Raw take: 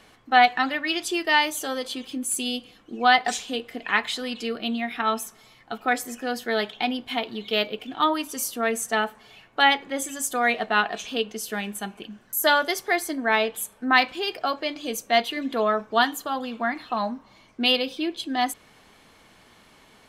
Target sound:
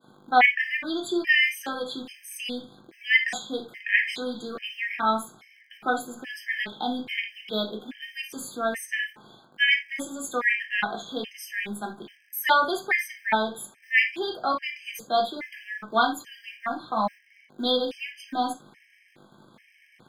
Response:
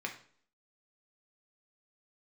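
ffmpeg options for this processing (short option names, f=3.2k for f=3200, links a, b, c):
-filter_complex "[0:a]agate=range=-33dB:threshold=-50dB:ratio=3:detection=peak,aeval=exprs='val(0)+0.00282*(sin(2*PI*50*n/s)+sin(2*PI*2*50*n/s)/2+sin(2*PI*3*50*n/s)/3+sin(2*PI*4*50*n/s)/4+sin(2*PI*5*50*n/s)/5)':c=same,acrossover=split=230|1200[a][b][c];[a]acrusher=bits=5:dc=4:mix=0:aa=0.000001[d];[d][b][c]amix=inputs=3:normalize=0[e];[1:a]atrim=start_sample=2205,atrim=end_sample=3969,asetrate=43659,aresample=44100[f];[e][f]afir=irnorm=-1:irlink=0,afftfilt=real='re*gt(sin(2*PI*1.2*pts/sr)*(1-2*mod(floor(b*sr/1024/1600),2)),0)':imag='im*gt(sin(2*PI*1.2*pts/sr)*(1-2*mod(floor(b*sr/1024/1600),2)),0)':win_size=1024:overlap=0.75"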